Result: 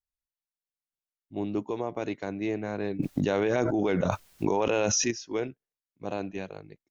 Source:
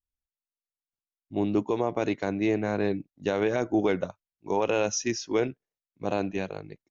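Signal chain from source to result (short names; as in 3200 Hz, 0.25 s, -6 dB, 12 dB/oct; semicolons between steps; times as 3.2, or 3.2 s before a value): 2.99–5.11 fast leveller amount 100%; gain -5 dB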